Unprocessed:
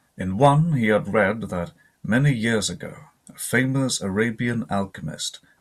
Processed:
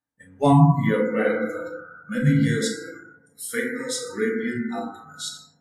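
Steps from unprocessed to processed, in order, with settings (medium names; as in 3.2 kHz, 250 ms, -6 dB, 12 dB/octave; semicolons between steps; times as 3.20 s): FDN reverb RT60 2.2 s, low-frequency decay 0.95×, high-frequency decay 0.25×, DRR -4.5 dB; dynamic bell 1.4 kHz, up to -5 dB, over -30 dBFS, Q 1.1; spectral noise reduction 24 dB; trim -5.5 dB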